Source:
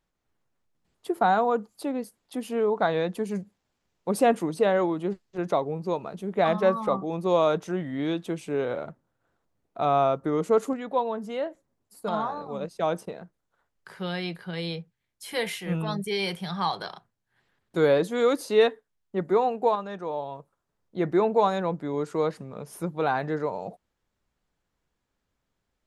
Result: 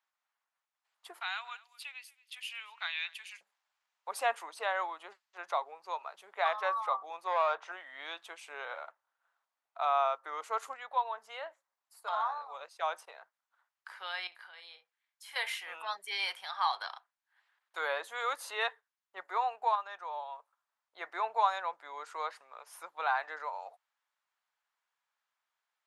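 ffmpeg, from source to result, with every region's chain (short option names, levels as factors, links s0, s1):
-filter_complex "[0:a]asettb=1/sr,asplit=3[s0][s1][s2];[s0]atrim=end=1.204[s3];[s1]atrim=start=1.2:end=3.41,asetpts=PTS-STARTPTS,afade=t=in:d=0.004:c=qsin,afade=t=out:st=2.206:d=0.004:c=qsin,highpass=f=2600:t=q:w=3.6,aecho=1:1:229:0.0891,atrim=end_sample=97461[s4];[s2]atrim=start=3.406[s5];[s3][s4]acrossfade=d=0.004:c1=hsin:c2=qsin[s6];[s6][s5]acrossfade=d=0.004:c1=qsin:c2=hsin,asettb=1/sr,asplit=3[s7][s8][s9];[s7]atrim=end=7.274[s10];[s8]atrim=start=7.27:end=7.72,asetpts=PTS-STARTPTS,afade=t=in:d=0.004:c=qsin,afade=t=out:st=0.446:d=0.004:c=qsin,lowpass=7300,asplit=2[s11][s12];[s12]highpass=f=720:p=1,volume=5.01,asoftclip=type=tanh:threshold=0.316[s13];[s11][s13]amix=inputs=2:normalize=0,lowpass=f=1000:p=1,volume=0.501[s14];[s9]atrim=start=7.716[s15];[s10][s14]acrossfade=d=0.004:c1=hsin:c2=qsin[s16];[s16][s15]acrossfade=d=0.004:c1=qsin:c2=hsin,asettb=1/sr,asplit=3[s17][s18][s19];[s17]atrim=end=14.274[s20];[s18]atrim=start=14.27:end=15.36,asetpts=PTS-STARTPTS,afade=t=in:d=0.004:c=qsin,afade=t=out:st=1.086:d=0.004:c=qsin,acompressor=threshold=0.00631:ratio=3:attack=3.2:release=140:knee=1:detection=peak,asplit=2[s21][s22];[s22]adelay=47,volume=0.316[s23];[s21][s23]amix=inputs=2:normalize=0,atrim=end_sample=48069[s24];[s19]atrim=start=15.356[s25];[s20][s24]acrossfade=d=0.004:c1=hsin:c2=qsin[s26];[s26][s25]acrossfade=d=0.004:c1=qsin:c2=hsin,asettb=1/sr,asplit=3[s27][s28][s29];[s27]atrim=end=17.784[s30];[s28]atrim=start=17.78:end=18.65,asetpts=PTS-STARTPTS,afade=t=in:d=0.004:c=qsin,afade=t=out:st=0.866:d=0.004:c=qsin,equalizer=f=4900:w=2:g=-6.5,bandreject=f=2300:w=25,acompressor=mode=upward:threshold=0.0355:ratio=2.5:attack=3.2:release=140:knee=2.83:detection=peak[s31];[s29]atrim=start=18.646[s32];[s30][s31]acrossfade=d=0.004:c1=hsin:c2=qsin[s33];[s33][s32]acrossfade=d=0.004:c1=qsin:c2=hsin,highpass=f=870:w=0.5412,highpass=f=870:w=1.3066,highshelf=f=4300:g=-8.5"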